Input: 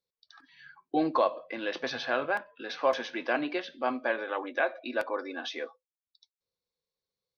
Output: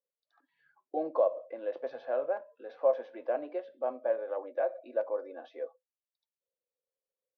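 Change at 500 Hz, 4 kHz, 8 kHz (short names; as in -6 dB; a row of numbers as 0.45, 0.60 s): +1.0 dB, under -20 dB, n/a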